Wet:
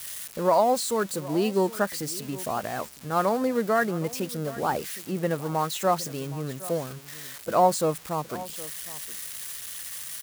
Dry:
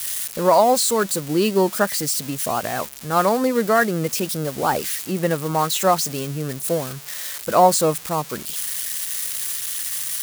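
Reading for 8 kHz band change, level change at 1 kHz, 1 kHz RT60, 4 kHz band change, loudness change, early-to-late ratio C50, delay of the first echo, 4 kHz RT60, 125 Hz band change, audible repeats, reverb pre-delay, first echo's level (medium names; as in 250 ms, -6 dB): -10.5 dB, -6.0 dB, no reverb, -9.5 dB, -6.5 dB, no reverb, 765 ms, no reverb, -5.5 dB, 1, no reverb, -18.0 dB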